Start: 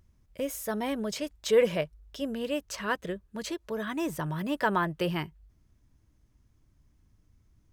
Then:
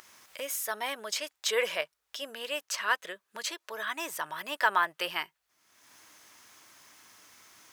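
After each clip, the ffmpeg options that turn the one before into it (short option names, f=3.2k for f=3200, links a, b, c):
-af "highpass=1k,acompressor=mode=upward:threshold=-43dB:ratio=2.5,volume=5dB"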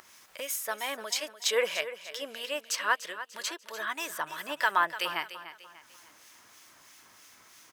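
-filter_complex "[0:a]acrossover=split=1800[a][b];[a]aeval=exprs='val(0)*(1-0.5/2+0.5/2*cos(2*PI*3.1*n/s))':c=same[c];[b]aeval=exprs='val(0)*(1-0.5/2-0.5/2*cos(2*PI*3.1*n/s))':c=same[d];[c][d]amix=inputs=2:normalize=0,aecho=1:1:295|590|885|1180:0.224|0.0851|0.0323|0.0123,volume=2.5dB"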